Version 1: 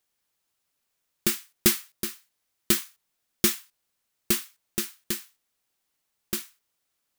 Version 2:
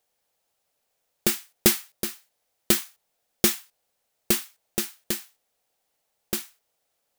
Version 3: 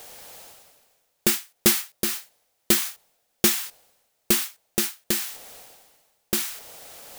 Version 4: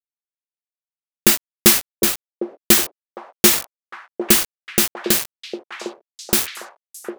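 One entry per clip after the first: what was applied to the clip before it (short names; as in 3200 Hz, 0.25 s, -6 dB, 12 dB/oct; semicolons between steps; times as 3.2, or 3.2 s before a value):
band shelf 610 Hz +9 dB 1.1 oct; gain +1.5 dB
reverse; upward compressor, threshold -25 dBFS; reverse; soft clip -13 dBFS, distortion -12 dB; gain +4 dB
bit-crush 4-bit; delay with a stepping band-pass 0.755 s, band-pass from 460 Hz, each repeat 0.7 oct, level -3.5 dB; gain +6.5 dB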